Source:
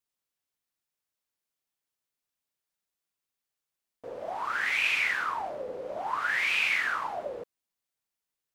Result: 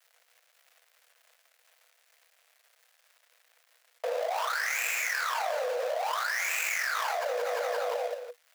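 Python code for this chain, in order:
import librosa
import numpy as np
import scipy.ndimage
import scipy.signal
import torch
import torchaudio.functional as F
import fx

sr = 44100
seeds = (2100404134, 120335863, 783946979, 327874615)

y = fx.dead_time(x, sr, dead_ms=0.14)
y = scipy.signal.sosfilt(scipy.signal.cheby1(6, 6, 470.0, 'highpass', fs=sr, output='sos'), y)
y = fx.echo_feedback(y, sr, ms=174, feedback_pct=48, wet_db=-13)
y = fx.env_flatten(y, sr, amount_pct=100)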